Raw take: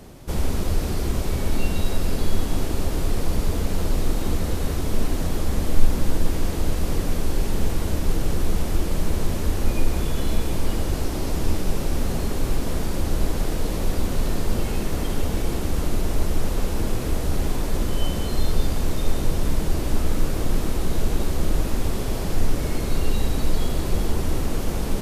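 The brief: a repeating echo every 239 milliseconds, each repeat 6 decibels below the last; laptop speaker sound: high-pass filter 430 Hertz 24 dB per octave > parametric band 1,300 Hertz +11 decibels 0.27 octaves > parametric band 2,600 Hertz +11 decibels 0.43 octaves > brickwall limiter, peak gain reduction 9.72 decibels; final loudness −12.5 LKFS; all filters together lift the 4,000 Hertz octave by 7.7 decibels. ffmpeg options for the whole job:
ffmpeg -i in.wav -af "highpass=frequency=430:width=0.5412,highpass=frequency=430:width=1.3066,equalizer=frequency=1300:width_type=o:width=0.27:gain=11,equalizer=frequency=2600:width_type=o:width=0.43:gain=11,equalizer=frequency=4000:width_type=o:gain=6,aecho=1:1:239|478|717|956|1195|1434:0.501|0.251|0.125|0.0626|0.0313|0.0157,volume=20dB,alimiter=limit=-5dB:level=0:latency=1" out.wav

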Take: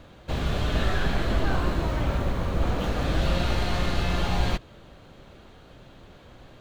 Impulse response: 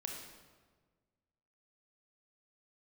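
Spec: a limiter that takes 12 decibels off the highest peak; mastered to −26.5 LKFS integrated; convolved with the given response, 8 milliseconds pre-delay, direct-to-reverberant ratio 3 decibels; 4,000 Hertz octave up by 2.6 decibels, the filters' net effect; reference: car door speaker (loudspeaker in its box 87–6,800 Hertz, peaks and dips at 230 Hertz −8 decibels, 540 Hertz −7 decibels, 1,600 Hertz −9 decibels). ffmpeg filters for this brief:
-filter_complex "[0:a]equalizer=frequency=4000:width_type=o:gain=3.5,alimiter=limit=-23dB:level=0:latency=1,asplit=2[link_01][link_02];[1:a]atrim=start_sample=2205,adelay=8[link_03];[link_02][link_03]afir=irnorm=-1:irlink=0,volume=-2dB[link_04];[link_01][link_04]amix=inputs=2:normalize=0,highpass=87,equalizer=frequency=230:width_type=q:width=4:gain=-8,equalizer=frequency=540:width_type=q:width=4:gain=-7,equalizer=frequency=1600:width_type=q:width=4:gain=-9,lowpass=frequency=6800:width=0.5412,lowpass=frequency=6800:width=1.3066,volume=8.5dB"

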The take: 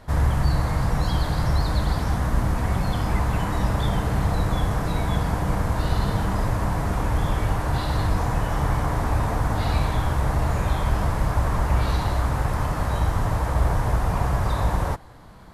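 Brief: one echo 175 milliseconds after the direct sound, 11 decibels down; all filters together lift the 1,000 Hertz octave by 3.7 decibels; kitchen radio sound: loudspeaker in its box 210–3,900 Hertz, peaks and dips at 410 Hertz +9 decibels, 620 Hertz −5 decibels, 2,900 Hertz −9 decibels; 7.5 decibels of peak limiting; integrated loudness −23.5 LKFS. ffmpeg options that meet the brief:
ffmpeg -i in.wav -af "equalizer=frequency=1000:width_type=o:gain=5,alimiter=limit=-15.5dB:level=0:latency=1,highpass=210,equalizer=frequency=410:width_type=q:width=4:gain=9,equalizer=frequency=620:width_type=q:width=4:gain=-5,equalizer=frequency=2900:width_type=q:width=4:gain=-9,lowpass=frequency=3900:width=0.5412,lowpass=frequency=3900:width=1.3066,aecho=1:1:175:0.282,volume=5.5dB" out.wav

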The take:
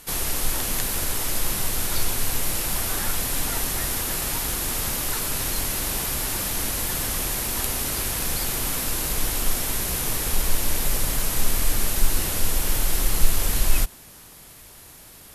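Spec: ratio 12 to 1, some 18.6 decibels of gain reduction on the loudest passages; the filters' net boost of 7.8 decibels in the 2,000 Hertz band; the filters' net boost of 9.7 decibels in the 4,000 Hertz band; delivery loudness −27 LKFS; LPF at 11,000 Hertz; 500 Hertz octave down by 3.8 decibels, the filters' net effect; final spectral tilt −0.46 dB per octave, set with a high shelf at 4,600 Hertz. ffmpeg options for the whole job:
ffmpeg -i in.wav -af "lowpass=11000,equalizer=frequency=500:width_type=o:gain=-5.5,equalizer=frequency=2000:width_type=o:gain=6.5,equalizer=frequency=4000:width_type=o:gain=6,highshelf=frequency=4600:gain=8.5,acompressor=threshold=-25dB:ratio=12" out.wav

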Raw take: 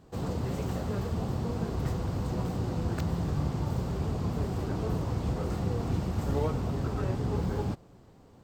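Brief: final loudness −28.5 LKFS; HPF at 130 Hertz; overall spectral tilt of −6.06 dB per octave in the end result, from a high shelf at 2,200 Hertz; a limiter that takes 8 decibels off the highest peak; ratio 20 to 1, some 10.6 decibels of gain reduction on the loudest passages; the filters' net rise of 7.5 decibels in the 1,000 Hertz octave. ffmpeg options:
ffmpeg -i in.wav -af "highpass=130,equalizer=frequency=1000:width_type=o:gain=8.5,highshelf=frequency=2200:gain=5.5,acompressor=threshold=-35dB:ratio=20,volume=12.5dB,alimiter=limit=-19dB:level=0:latency=1" out.wav

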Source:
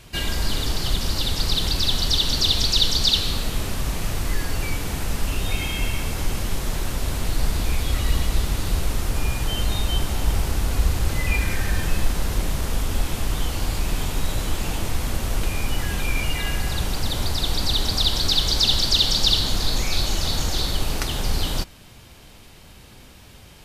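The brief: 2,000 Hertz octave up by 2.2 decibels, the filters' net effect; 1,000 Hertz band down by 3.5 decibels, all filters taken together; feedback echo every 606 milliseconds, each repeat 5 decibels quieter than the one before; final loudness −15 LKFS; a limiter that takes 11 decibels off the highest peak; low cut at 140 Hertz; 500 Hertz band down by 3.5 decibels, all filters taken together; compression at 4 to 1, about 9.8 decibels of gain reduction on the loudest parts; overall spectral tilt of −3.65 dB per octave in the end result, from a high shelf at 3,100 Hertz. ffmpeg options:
ffmpeg -i in.wav -af "highpass=140,equalizer=frequency=500:width_type=o:gain=-3.5,equalizer=frequency=1000:width_type=o:gain=-4.5,equalizer=frequency=2000:width_type=o:gain=6,highshelf=frequency=3100:gain=-5,acompressor=threshold=-29dB:ratio=4,alimiter=level_in=0.5dB:limit=-24dB:level=0:latency=1,volume=-0.5dB,aecho=1:1:606|1212|1818|2424|3030|3636|4242:0.562|0.315|0.176|0.0988|0.0553|0.031|0.0173,volume=16.5dB" out.wav

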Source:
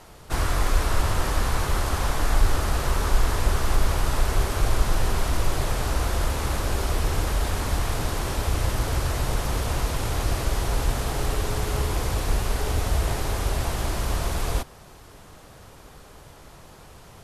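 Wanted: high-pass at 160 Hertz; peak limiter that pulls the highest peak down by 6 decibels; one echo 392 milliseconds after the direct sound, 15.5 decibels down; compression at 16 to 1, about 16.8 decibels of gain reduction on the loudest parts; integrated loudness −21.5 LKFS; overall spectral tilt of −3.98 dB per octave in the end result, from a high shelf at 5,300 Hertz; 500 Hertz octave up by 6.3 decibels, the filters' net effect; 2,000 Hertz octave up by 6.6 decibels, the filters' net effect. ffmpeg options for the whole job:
ffmpeg -i in.wav -af "highpass=160,equalizer=frequency=500:width_type=o:gain=7.5,equalizer=frequency=2000:width_type=o:gain=9,highshelf=frequency=5300:gain=-8,acompressor=threshold=-39dB:ratio=16,alimiter=level_in=10.5dB:limit=-24dB:level=0:latency=1,volume=-10.5dB,aecho=1:1:392:0.168,volume=22dB" out.wav

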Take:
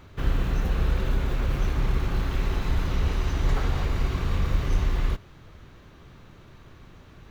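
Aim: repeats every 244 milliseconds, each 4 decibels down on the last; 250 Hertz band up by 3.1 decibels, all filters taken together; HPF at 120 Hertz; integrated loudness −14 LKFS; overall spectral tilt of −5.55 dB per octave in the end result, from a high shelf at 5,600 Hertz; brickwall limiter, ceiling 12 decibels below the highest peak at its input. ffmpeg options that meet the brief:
ffmpeg -i in.wav -af "highpass=120,equalizer=frequency=250:width_type=o:gain=5,highshelf=frequency=5600:gain=-8,alimiter=level_in=6dB:limit=-24dB:level=0:latency=1,volume=-6dB,aecho=1:1:244|488|732|976|1220|1464|1708|1952|2196:0.631|0.398|0.25|0.158|0.0994|0.0626|0.0394|0.0249|0.0157,volume=23.5dB" out.wav

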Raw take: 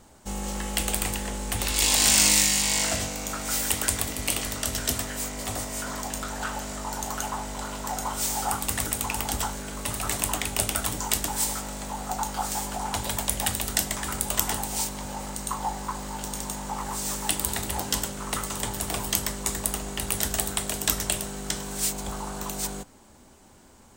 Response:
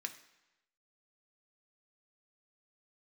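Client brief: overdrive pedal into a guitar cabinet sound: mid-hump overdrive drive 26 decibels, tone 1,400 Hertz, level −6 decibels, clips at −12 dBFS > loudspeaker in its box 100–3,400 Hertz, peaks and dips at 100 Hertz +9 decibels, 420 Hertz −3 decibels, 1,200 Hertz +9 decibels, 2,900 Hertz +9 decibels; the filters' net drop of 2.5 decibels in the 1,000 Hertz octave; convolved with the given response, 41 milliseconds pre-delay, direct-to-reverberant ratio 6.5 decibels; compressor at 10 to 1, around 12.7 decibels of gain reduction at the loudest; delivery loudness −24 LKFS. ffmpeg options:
-filter_complex "[0:a]equalizer=frequency=1000:width_type=o:gain=-7,acompressor=threshold=-31dB:ratio=10,asplit=2[link_01][link_02];[1:a]atrim=start_sample=2205,adelay=41[link_03];[link_02][link_03]afir=irnorm=-1:irlink=0,volume=-5.5dB[link_04];[link_01][link_04]amix=inputs=2:normalize=0,asplit=2[link_05][link_06];[link_06]highpass=frequency=720:poles=1,volume=26dB,asoftclip=type=tanh:threshold=-12dB[link_07];[link_05][link_07]amix=inputs=2:normalize=0,lowpass=frequency=1400:poles=1,volume=-6dB,highpass=100,equalizer=frequency=100:width_type=q:width=4:gain=9,equalizer=frequency=420:width_type=q:width=4:gain=-3,equalizer=frequency=1200:width_type=q:width=4:gain=9,equalizer=frequency=2900:width_type=q:width=4:gain=9,lowpass=frequency=3400:width=0.5412,lowpass=frequency=3400:width=1.3066,volume=2.5dB"

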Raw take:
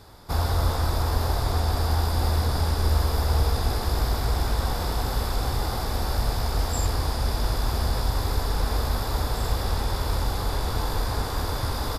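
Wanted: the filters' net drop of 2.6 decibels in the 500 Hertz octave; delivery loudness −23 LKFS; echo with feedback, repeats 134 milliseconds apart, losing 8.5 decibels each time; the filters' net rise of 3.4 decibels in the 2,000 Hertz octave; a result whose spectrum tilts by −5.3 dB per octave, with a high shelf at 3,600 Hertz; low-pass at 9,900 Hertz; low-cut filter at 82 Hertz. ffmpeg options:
ffmpeg -i in.wav -af "highpass=82,lowpass=9900,equalizer=frequency=500:width_type=o:gain=-3.5,equalizer=frequency=2000:width_type=o:gain=6.5,highshelf=frequency=3600:gain=-7,aecho=1:1:134|268|402|536:0.376|0.143|0.0543|0.0206,volume=5.5dB" out.wav

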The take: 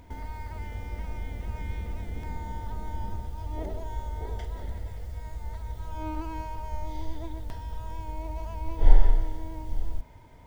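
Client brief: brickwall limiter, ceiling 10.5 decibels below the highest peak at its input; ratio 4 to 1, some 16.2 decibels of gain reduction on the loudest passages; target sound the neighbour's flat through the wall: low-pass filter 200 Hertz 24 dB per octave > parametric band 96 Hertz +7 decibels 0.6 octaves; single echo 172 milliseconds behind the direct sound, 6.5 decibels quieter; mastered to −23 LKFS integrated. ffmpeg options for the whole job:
ffmpeg -i in.wav -af "acompressor=threshold=-27dB:ratio=4,alimiter=level_in=5dB:limit=-24dB:level=0:latency=1,volume=-5dB,lowpass=frequency=200:width=0.5412,lowpass=frequency=200:width=1.3066,equalizer=frequency=96:width_type=o:width=0.6:gain=7,aecho=1:1:172:0.473,volume=16.5dB" out.wav

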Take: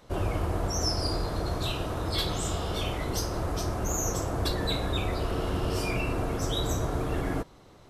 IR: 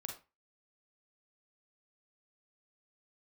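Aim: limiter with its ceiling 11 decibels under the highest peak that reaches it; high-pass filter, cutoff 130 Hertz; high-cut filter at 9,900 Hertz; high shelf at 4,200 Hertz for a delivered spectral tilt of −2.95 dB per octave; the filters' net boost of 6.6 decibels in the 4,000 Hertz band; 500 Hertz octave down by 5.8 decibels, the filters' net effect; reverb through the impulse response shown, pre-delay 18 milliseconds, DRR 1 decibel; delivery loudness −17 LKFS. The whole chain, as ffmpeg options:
-filter_complex "[0:a]highpass=130,lowpass=9900,equalizer=frequency=500:width_type=o:gain=-8,equalizer=frequency=4000:width_type=o:gain=5,highshelf=frequency=4200:gain=5.5,alimiter=limit=-22.5dB:level=0:latency=1,asplit=2[link_01][link_02];[1:a]atrim=start_sample=2205,adelay=18[link_03];[link_02][link_03]afir=irnorm=-1:irlink=0,volume=1.5dB[link_04];[link_01][link_04]amix=inputs=2:normalize=0,volume=12.5dB"

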